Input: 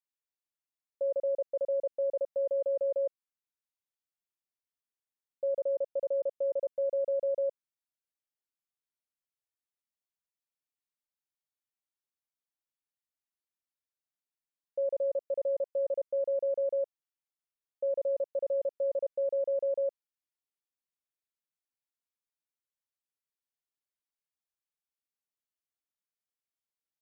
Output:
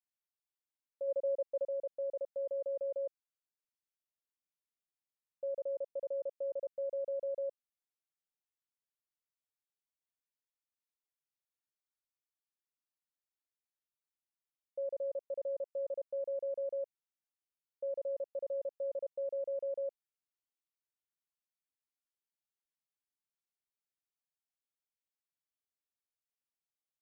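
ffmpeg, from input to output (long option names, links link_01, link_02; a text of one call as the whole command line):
ffmpeg -i in.wav -filter_complex "[0:a]asplit=3[link_01][link_02][link_03];[link_01]afade=type=out:start_time=1.07:duration=0.02[link_04];[link_02]aecho=1:1:3.7:0.55,afade=type=in:start_time=1.07:duration=0.02,afade=type=out:start_time=1.63:duration=0.02[link_05];[link_03]afade=type=in:start_time=1.63:duration=0.02[link_06];[link_04][link_05][link_06]amix=inputs=3:normalize=0,volume=-7dB" out.wav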